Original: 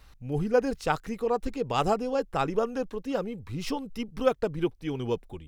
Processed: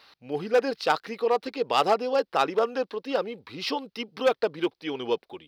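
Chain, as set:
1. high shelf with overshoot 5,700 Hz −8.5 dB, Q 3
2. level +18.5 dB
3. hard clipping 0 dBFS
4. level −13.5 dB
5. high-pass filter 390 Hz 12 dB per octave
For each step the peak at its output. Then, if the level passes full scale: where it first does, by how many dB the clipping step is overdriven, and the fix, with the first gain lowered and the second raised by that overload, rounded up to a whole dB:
−9.5, +9.0, 0.0, −13.5, −8.0 dBFS
step 2, 9.0 dB
step 2 +9.5 dB, step 4 −4.5 dB

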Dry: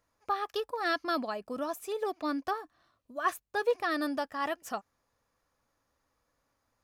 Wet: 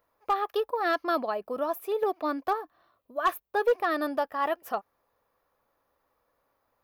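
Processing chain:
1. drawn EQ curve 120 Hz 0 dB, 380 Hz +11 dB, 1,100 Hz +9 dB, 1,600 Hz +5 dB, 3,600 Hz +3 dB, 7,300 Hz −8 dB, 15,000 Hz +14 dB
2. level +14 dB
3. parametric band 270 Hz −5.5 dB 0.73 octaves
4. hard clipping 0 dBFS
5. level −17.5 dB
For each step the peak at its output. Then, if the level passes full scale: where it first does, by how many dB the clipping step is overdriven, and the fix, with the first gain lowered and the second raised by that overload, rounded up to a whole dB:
−7.5, +6.5, +6.5, 0.0, −17.5 dBFS
step 2, 6.5 dB
step 2 +7 dB, step 5 −10.5 dB

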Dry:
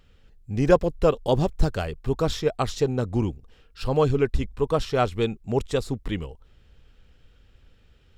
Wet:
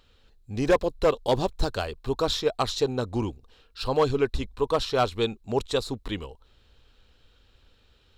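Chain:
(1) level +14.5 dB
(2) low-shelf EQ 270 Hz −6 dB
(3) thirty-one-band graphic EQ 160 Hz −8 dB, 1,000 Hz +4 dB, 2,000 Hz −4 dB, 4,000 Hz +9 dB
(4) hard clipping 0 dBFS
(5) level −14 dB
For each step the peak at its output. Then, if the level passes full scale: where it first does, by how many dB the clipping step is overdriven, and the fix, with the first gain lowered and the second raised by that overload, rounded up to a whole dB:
+9.5, +7.5, +8.5, 0.0, −14.0 dBFS
step 1, 8.5 dB
step 1 +5.5 dB, step 5 −5 dB

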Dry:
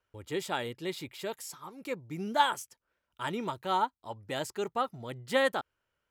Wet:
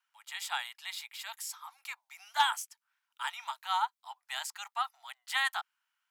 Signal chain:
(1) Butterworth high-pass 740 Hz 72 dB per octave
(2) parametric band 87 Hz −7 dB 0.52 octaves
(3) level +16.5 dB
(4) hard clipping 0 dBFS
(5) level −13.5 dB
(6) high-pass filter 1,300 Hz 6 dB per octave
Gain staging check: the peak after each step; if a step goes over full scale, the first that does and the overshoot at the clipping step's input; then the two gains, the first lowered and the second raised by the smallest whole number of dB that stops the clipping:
−12.5, −12.5, +4.0, 0.0, −13.5, −13.5 dBFS
step 3, 4.0 dB
step 3 +12.5 dB, step 5 −9.5 dB

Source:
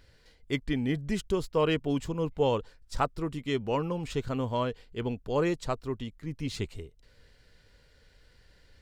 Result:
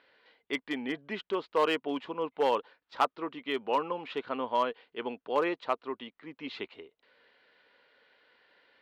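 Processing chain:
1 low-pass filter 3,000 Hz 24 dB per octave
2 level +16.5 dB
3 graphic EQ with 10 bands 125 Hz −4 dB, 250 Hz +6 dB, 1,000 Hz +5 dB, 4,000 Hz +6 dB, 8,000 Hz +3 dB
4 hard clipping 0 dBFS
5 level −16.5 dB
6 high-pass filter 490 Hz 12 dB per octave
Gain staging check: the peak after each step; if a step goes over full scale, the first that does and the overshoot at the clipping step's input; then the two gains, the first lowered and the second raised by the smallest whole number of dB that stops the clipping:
−13.0, +3.5, +7.0, 0.0, −16.5, −12.0 dBFS
step 2, 7.0 dB
step 2 +9.5 dB, step 5 −9.5 dB

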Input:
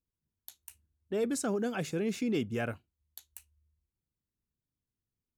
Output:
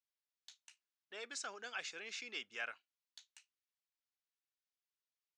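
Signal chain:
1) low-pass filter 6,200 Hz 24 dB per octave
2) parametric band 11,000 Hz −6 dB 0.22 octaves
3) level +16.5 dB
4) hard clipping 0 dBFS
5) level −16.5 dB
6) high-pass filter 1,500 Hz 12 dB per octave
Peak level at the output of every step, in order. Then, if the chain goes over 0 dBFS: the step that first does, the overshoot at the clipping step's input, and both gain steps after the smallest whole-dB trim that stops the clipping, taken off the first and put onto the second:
−21.0, −21.0, −4.5, −4.5, −21.0, −27.5 dBFS
no step passes full scale

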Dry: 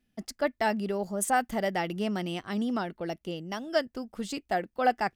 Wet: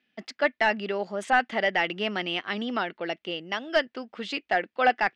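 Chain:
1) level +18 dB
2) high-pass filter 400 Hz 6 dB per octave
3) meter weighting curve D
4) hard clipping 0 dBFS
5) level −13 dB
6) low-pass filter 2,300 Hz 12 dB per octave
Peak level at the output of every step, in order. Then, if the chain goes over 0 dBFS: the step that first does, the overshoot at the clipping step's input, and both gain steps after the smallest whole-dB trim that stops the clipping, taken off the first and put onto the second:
+5.5, +4.0, +8.5, 0.0, −13.0, −12.5 dBFS
step 1, 8.5 dB
step 1 +9 dB, step 5 −4 dB

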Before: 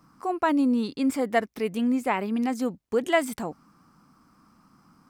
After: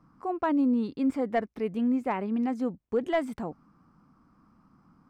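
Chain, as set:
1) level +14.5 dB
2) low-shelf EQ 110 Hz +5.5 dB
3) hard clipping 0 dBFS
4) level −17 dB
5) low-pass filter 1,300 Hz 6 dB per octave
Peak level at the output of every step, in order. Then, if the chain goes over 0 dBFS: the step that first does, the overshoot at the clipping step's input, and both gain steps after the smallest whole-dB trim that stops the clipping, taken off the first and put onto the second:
+5.5, +6.0, 0.0, −17.0, −17.0 dBFS
step 1, 6.0 dB
step 1 +8.5 dB, step 4 −11 dB

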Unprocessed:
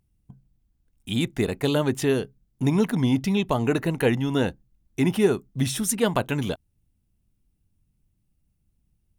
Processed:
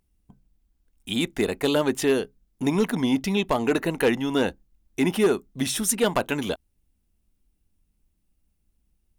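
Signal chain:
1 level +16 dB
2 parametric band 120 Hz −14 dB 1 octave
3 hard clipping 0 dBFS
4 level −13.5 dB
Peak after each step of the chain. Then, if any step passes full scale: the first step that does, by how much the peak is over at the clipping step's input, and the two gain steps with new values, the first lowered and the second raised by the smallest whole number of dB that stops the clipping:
+8.5, +8.0, 0.0, −13.5 dBFS
step 1, 8.0 dB
step 1 +8 dB, step 4 −5.5 dB

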